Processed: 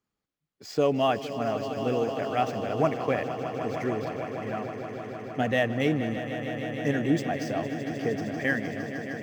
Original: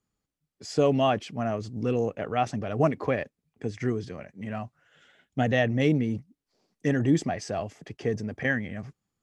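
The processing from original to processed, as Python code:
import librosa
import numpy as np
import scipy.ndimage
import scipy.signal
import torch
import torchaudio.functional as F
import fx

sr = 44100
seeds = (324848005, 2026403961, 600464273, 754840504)

y = scipy.signal.medfilt(x, 5)
y = fx.low_shelf(y, sr, hz=180.0, db=-8.5)
y = fx.echo_swell(y, sr, ms=154, loudest=5, wet_db=-13.0)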